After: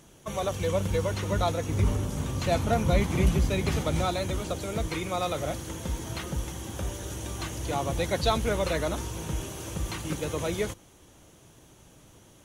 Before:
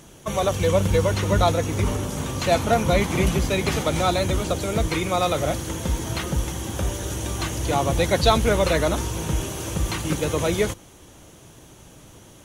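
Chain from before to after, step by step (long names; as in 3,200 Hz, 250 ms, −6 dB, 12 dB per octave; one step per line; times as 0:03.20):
0:01.69–0:04.06: low-shelf EQ 190 Hz +8.5 dB
level −7.5 dB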